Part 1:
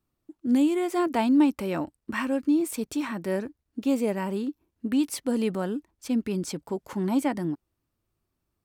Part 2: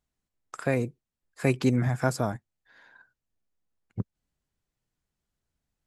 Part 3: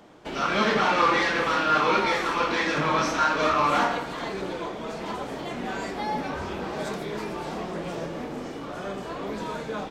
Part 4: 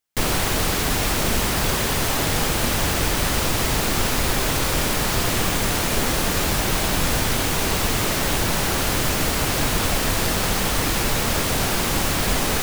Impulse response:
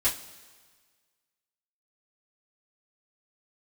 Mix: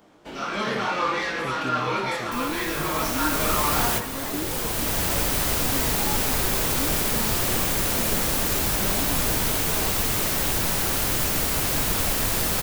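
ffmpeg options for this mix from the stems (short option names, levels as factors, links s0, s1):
-filter_complex "[0:a]adelay=1850,volume=0.282[s0];[1:a]volume=0.299,asplit=2[s1][s2];[2:a]acontrast=56,flanger=delay=18.5:depth=7.1:speed=0.74,volume=0.447[s3];[3:a]adelay=2150,volume=0.562[s4];[s2]apad=whole_len=651603[s5];[s4][s5]sidechaincompress=threshold=0.00447:ratio=3:attack=16:release=1110[s6];[s0][s1][s3][s6]amix=inputs=4:normalize=0,highshelf=f=9600:g=10"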